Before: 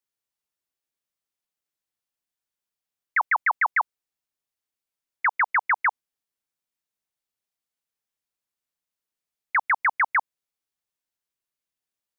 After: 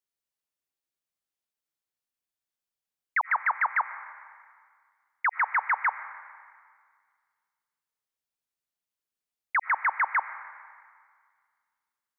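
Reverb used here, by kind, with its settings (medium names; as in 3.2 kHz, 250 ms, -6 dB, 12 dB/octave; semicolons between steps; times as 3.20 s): algorithmic reverb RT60 1.9 s, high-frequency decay 0.95×, pre-delay 60 ms, DRR 12 dB; trim -3.5 dB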